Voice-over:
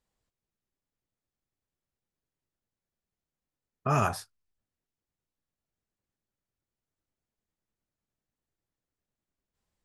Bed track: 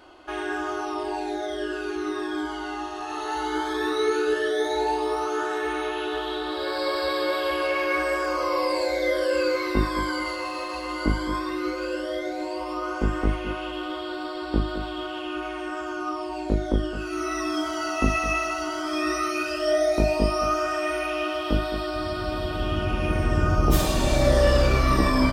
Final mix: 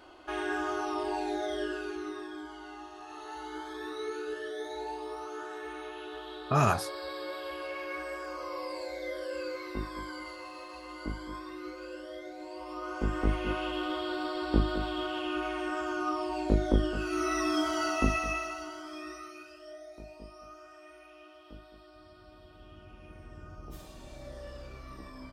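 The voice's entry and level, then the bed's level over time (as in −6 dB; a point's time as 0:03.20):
2.65 s, +1.0 dB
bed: 0:01.58 −3.5 dB
0:02.39 −13.5 dB
0:12.39 −13.5 dB
0:13.51 −2 dB
0:17.84 −2 dB
0:19.81 −26 dB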